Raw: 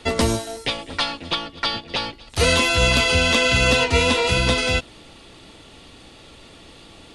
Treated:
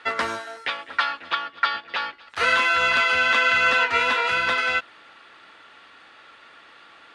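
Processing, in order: band-pass filter 1.5 kHz, Q 2.9; trim +8.5 dB

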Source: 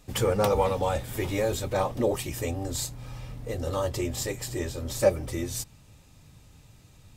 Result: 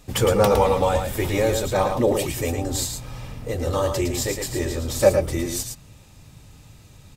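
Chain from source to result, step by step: delay 111 ms -6 dB; trim +5.5 dB

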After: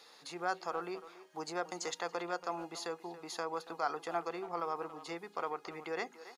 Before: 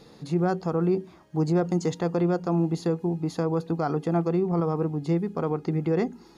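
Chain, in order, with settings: high-pass 1 kHz 12 dB/octave; speakerphone echo 280 ms, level -14 dB

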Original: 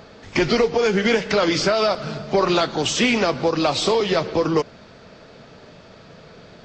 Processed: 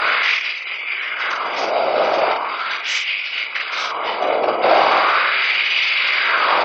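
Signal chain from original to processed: spectral levelling over time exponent 0.2; high-pass 170 Hz 12 dB/octave; spectral gate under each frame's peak -20 dB strong; compressor with a negative ratio -15 dBFS, ratio -0.5; LFO high-pass sine 0.39 Hz 620–2500 Hz; whisper effect; on a send: early reflections 18 ms -6 dB, 48 ms -4 dB; on the sum: trim -4.5 dB

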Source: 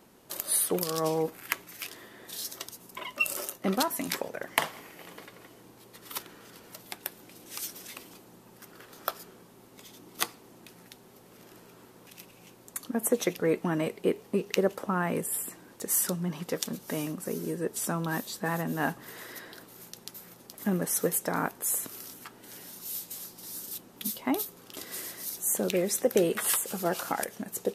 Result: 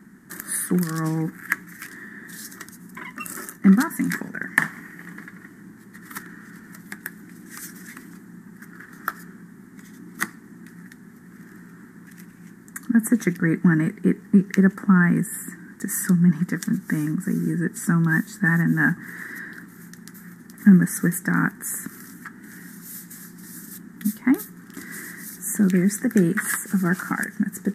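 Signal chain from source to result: FFT filter 120 Hz 0 dB, 190 Hz +13 dB, 330 Hz +2 dB, 540 Hz -18 dB, 1.1 kHz -4 dB, 1.8 kHz +11 dB, 2.6 kHz -16 dB, 4.4 kHz -12 dB, 7.8 kHz -3 dB, 13 kHz -8 dB; trim +5 dB

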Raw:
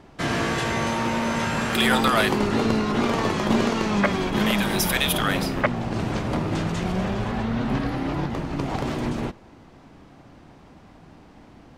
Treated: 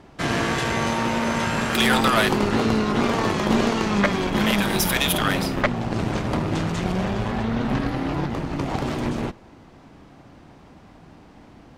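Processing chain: valve stage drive 14 dB, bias 0.7; trim +5 dB

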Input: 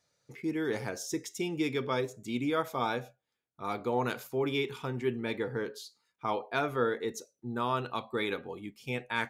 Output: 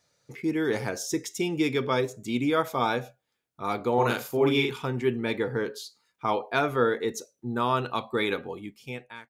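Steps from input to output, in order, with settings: fade out at the end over 0.86 s; 3.94–4.73 s: doubling 42 ms -2.5 dB; trim +5.5 dB

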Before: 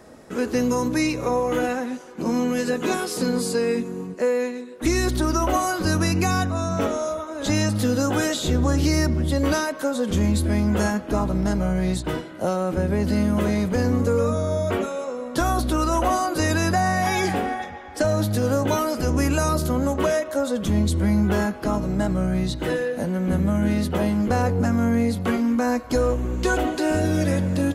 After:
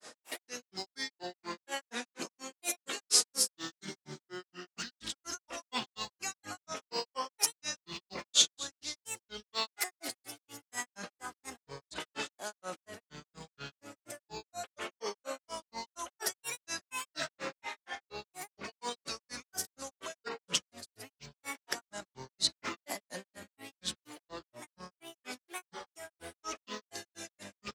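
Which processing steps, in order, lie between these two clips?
compressor with a negative ratio -28 dBFS, ratio -1; frequency weighting ITU-R 468; feedback delay 256 ms, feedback 46%, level -15 dB; granulator 150 ms, grains 4.2 per s, pitch spread up and down by 7 st; trim -6 dB

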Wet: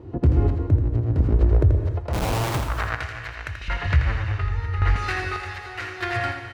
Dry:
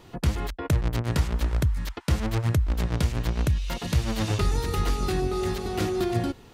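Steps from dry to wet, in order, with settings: resonant low shelf 130 Hz +12 dB, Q 3; band-stop 3.4 kHz, Q 12; 3.68–4.96 s: RIAA curve playback; in parallel at -3 dB: compression, threshold -5 dBFS, peak gain reduction 18 dB; on the sum: square tremolo 0.83 Hz, depth 60%, duty 45%; band-pass sweep 290 Hz -> 1.8 kHz, 1.30–3.05 s; 2.13–2.61 s: Schmitt trigger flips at -49 dBFS; on a send: delay 83 ms -7.5 dB; on the sum: gated-style reverb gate 330 ms flat, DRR 9 dB; loudness maximiser +19.5 dB; trim -8 dB

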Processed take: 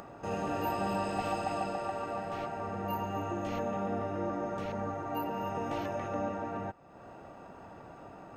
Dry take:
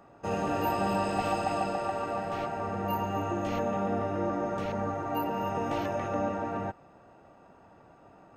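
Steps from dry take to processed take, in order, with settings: upward compressor, threshold -34 dBFS; trim -4 dB

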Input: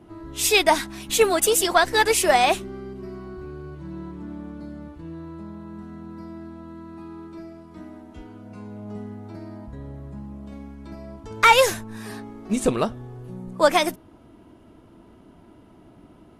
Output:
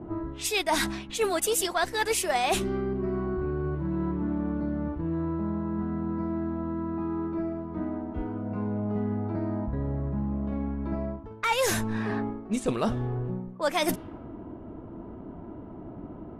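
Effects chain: level-controlled noise filter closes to 940 Hz, open at -18.5 dBFS; reverse; compression 6:1, threshold -34 dBFS, peak gain reduction 22.5 dB; reverse; trim +9 dB

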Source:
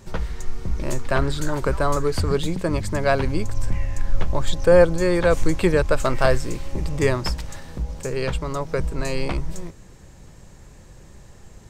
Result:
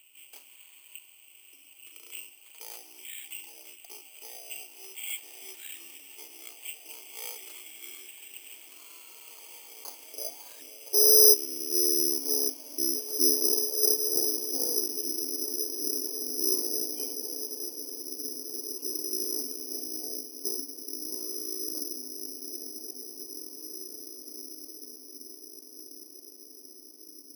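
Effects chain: high-pass 180 Hz 24 dB/octave; resonant high shelf 5 kHz +10.5 dB, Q 3; in parallel at 0 dB: compression, threshold -49 dBFS, peak gain reduction 34.5 dB; on the sum: frequency shift +470 Hz; band-pass sweep 5.8 kHz -> 650 Hz, 3.49–5.23 s; on a send: echo that smears into a reverb 1084 ms, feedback 45%, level -6 dB; on the sum: speed mistake 78 rpm record played at 33 rpm; careless resampling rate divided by 8×, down filtered, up zero stuff; trim -13 dB

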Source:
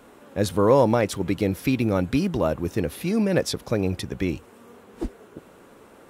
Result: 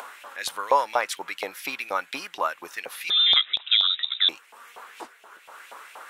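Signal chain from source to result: 3.10–4.29 s: frequency inversion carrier 3.8 kHz; upward compressor, threshold -31 dBFS; LFO high-pass saw up 4.2 Hz 790–2800 Hz

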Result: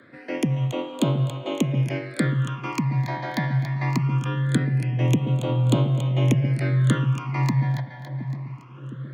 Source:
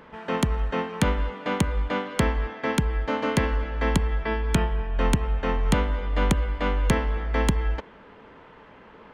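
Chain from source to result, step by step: two-band feedback delay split 560 Hz, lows 713 ms, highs 281 ms, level -9.5 dB; phase shifter stages 8, 0.22 Hz, lowest notch 350–1700 Hz; frequency shift +81 Hz

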